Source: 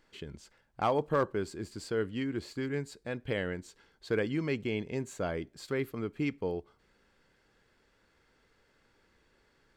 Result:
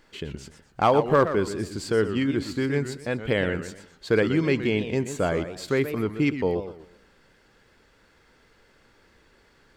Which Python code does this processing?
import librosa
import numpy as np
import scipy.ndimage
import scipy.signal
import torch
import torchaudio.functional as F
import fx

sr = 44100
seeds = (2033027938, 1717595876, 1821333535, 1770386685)

y = fx.echo_warbled(x, sr, ms=124, feedback_pct=32, rate_hz=2.8, cents=217, wet_db=-10.5)
y = F.gain(torch.from_numpy(y), 9.0).numpy()